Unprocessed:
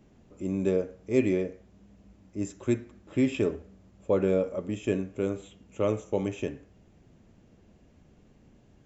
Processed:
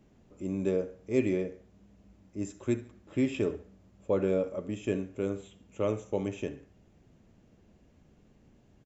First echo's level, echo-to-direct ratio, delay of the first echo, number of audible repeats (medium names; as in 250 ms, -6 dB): -17.5 dB, -17.0 dB, 71 ms, 2